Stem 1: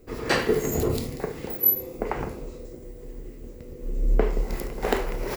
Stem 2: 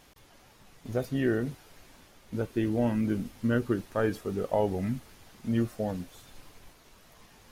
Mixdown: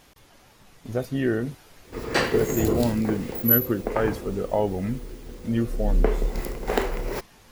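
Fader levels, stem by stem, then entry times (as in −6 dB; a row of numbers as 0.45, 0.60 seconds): +0.5, +3.0 decibels; 1.85, 0.00 seconds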